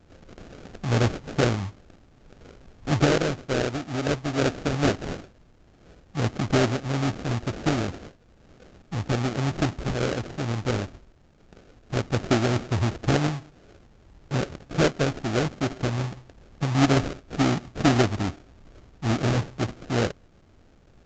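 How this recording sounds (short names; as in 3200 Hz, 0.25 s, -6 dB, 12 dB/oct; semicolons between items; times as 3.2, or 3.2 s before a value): phasing stages 12, 2.3 Hz, lowest notch 670–1700 Hz; aliases and images of a low sample rate 1000 Hz, jitter 20%; µ-law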